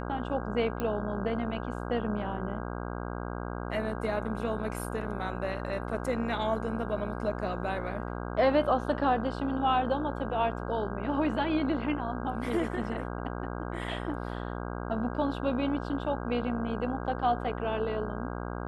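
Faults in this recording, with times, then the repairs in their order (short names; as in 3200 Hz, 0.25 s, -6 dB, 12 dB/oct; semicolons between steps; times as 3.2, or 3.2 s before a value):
buzz 60 Hz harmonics 27 -36 dBFS
0.8 pop -19 dBFS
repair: de-click; de-hum 60 Hz, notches 27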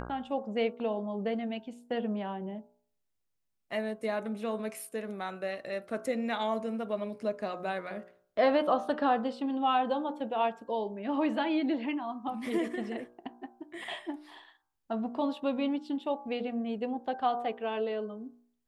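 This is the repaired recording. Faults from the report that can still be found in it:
none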